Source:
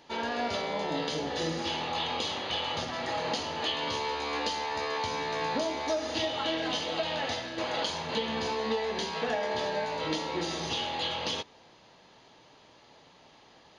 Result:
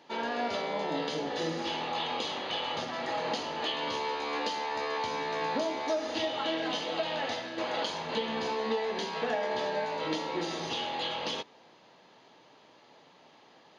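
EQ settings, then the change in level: HPF 170 Hz 12 dB/oct; high shelf 4500 Hz -7 dB; 0.0 dB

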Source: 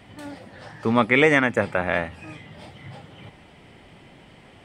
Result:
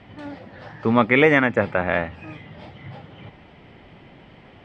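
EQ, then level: air absorption 180 m; +2.5 dB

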